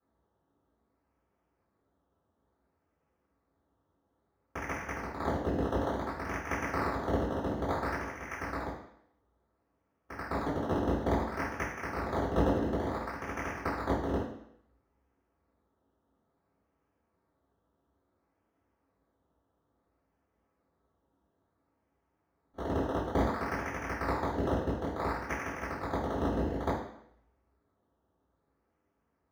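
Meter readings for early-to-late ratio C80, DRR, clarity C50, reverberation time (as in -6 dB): 7.5 dB, -14.5 dB, 3.5 dB, 0.70 s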